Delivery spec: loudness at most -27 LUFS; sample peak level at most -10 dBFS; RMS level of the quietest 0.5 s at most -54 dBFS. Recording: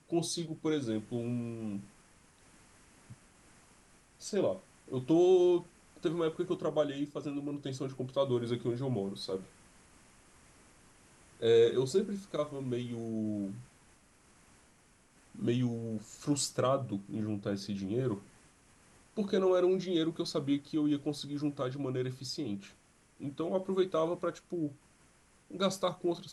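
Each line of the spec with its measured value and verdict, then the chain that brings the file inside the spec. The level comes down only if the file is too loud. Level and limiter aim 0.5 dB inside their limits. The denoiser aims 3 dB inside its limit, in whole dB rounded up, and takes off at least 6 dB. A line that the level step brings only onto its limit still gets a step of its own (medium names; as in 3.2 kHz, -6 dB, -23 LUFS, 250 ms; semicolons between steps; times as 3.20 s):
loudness -33.5 LUFS: pass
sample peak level -16.0 dBFS: pass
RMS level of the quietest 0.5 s -64 dBFS: pass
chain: none needed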